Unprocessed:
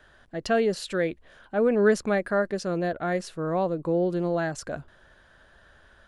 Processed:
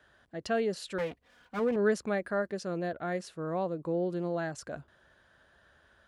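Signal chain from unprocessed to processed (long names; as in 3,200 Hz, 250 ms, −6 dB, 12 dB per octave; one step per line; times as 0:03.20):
0:00.98–0:01.76: lower of the sound and its delayed copy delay 4.1 ms
high-pass filter 63 Hz
level −6.5 dB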